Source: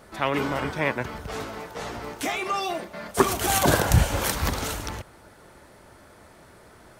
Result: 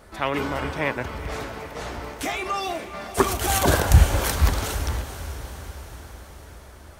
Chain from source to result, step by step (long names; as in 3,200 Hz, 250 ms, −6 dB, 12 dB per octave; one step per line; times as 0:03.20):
low shelf with overshoot 100 Hz +6 dB, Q 1.5
on a send: feedback delay with all-pass diffusion 479 ms, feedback 60%, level −12.5 dB